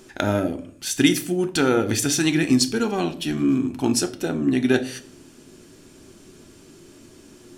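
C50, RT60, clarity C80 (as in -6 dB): 16.0 dB, 0.55 s, 19.5 dB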